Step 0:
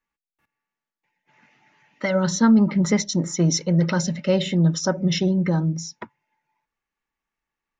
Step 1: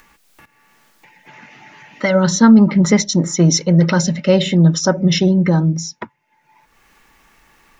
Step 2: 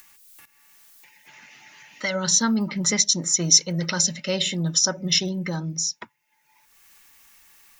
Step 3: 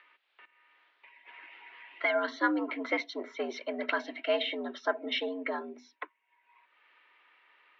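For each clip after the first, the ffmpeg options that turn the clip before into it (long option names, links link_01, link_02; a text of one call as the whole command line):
ffmpeg -i in.wav -af "acompressor=mode=upward:threshold=-38dB:ratio=2.5,volume=7dB" out.wav
ffmpeg -i in.wav -af "crystalizer=i=9:c=0,volume=-15dB" out.wav
ffmpeg -i in.wav -filter_complex "[0:a]highpass=frequency=180:width_type=q:width=0.5412,highpass=frequency=180:width_type=q:width=1.307,lowpass=frequency=3600:width_type=q:width=0.5176,lowpass=frequency=3600:width_type=q:width=0.7071,lowpass=frequency=3600:width_type=q:width=1.932,afreqshift=82,acrossover=split=380 2900:gain=0.158 1 0.178[link_01][link_02][link_03];[link_01][link_02][link_03]amix=inputs=3:normalize=0" out.wav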